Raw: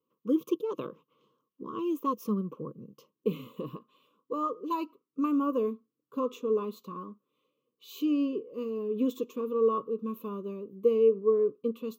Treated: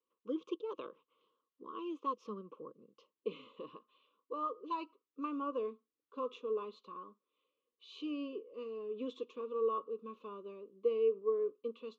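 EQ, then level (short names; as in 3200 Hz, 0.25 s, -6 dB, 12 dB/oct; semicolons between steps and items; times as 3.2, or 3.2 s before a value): HPF 410 Hz 12 dB/oct; ladder low-pass 4900 Hz, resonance 25%; 0.0 dB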